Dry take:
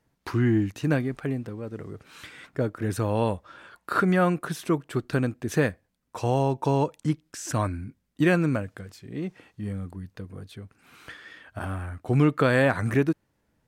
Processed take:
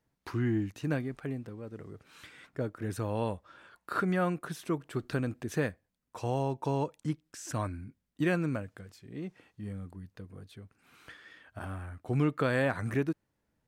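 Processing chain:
0:04.77–0:05.48: transient designer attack +1 dB, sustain +6 dB
level −7.5 dB

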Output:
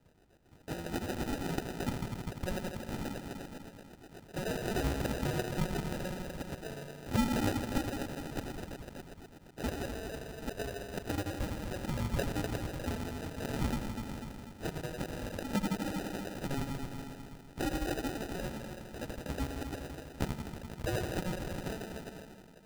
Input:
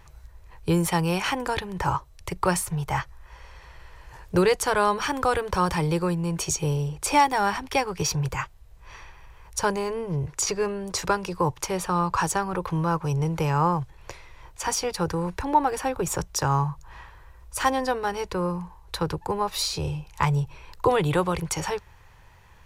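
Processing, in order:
first difference
delay with a low-pass on its return 82 ms, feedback 78%, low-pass 2,600 Hz, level −5 dB
auto-filter low-pass saw up 8.1 Hz 620–2,600 Hz
in parallel at +3 dB: downward compressor, threshold −45 dBFS, peak gain reduction 17.5 dB
on the sum: decimation without filtering 40×

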